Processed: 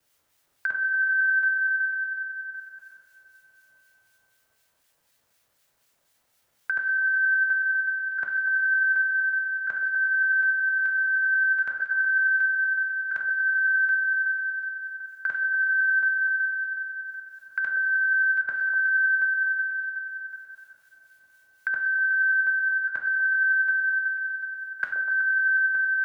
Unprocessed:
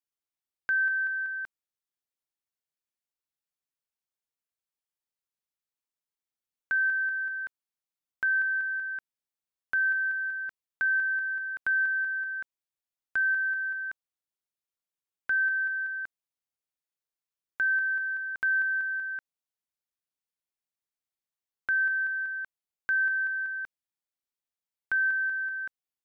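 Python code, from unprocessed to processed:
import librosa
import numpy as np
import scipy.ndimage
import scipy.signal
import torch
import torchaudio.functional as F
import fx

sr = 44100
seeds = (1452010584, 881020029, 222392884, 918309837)

p1 = fx.local_reverse(x, sr, ms=93.0)
p2 = fx.echo_feedback(p1, sr, ms=371, feedback_pct=34, wet_db=-14.0)
p3 = fx.over_compress(p2, sr, threshold_db=-30.0, ratio=-0.5)
p4 = p3 + fx.echo_stepped(p3, sr, ms=123, hz=500.0, octaves=0.7, feedback_pct=70, wet_db=-4, dry=0)
p5 = fx.rev_double_slope(p4, sr, seeds[0], early_s=0.68, late_s=2.8, knee_db=-19, drr_db=2.5)
p6 = fx.harmonic_tremolo(p5, sr, hz=4.0, depth_pct=50, crossover_hz=1600.0)
p7 = fx.graphic_eq_15(p6, sr, hz=(100, 630, 1600), db=(8, 4, 3))
y = fx.band_squash(p7, sr, depth_pct=70)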